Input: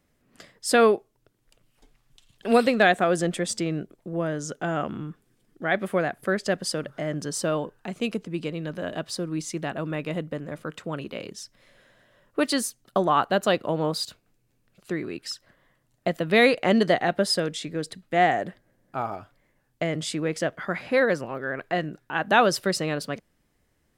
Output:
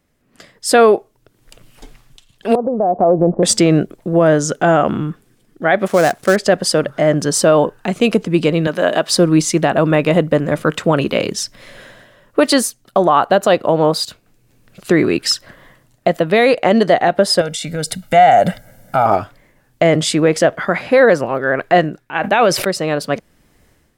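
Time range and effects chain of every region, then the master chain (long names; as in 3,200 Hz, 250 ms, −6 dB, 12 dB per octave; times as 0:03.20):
0:02.55–0:03.43: Butterworth low-pass 1,000 Hz 48 dB per octave + downward compressor, threshold −25 dBFS
0:05.86–0:06.36: gap after every zero crossing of 0.088 ms + parametric band 7,200 Hz +4.5 dB 1.4 octaves
0:08.67–0:09.12: Bessel high-pass filter 170 Hz + low-shelf EQ 250 Hz −8.5 dB
0:17.41–0:19.06: high-shelf EQ 7,200 Hz +10.5 dB + comb filter 1.4 ms, depth 73% + downward compressor 5 to 1, threshold −30 dBFS
0:22.06–0:22.65: parametric band 2,300 Hz +10.5 dB 0.35 octaves + level that may fall only so fast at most 55 dB per second
whole clip: dynamic equaliser 680 Hz, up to +6 dB, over −35 dBFS, Q 0.84; automatic gain control gain up to 16.5 dB; boost into a limiter +5 dB; level −1 dB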